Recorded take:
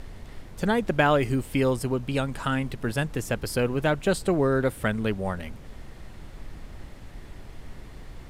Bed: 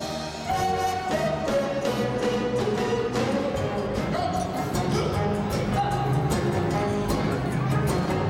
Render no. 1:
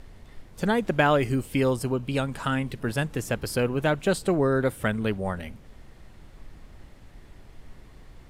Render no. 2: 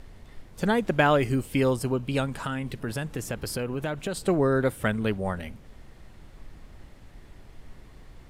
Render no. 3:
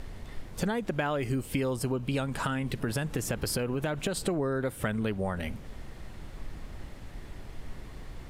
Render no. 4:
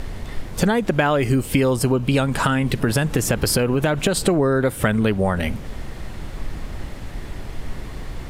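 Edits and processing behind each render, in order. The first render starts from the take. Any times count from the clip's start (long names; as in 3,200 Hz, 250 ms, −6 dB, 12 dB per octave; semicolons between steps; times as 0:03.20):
noise reduction from a noise print 6 dB
0:02.28–0:04.17: downward compressor 5 to 1, threshold −26 dBFS
in parallel at −1.5 dB: brickwall limiter −20.5 dBFS, peak gain reduction 12 dB; on the sum: downward compressor 6 to 1, threshold −27 dBFS, peak gain reduction 12.5 dB
level +11.5 dB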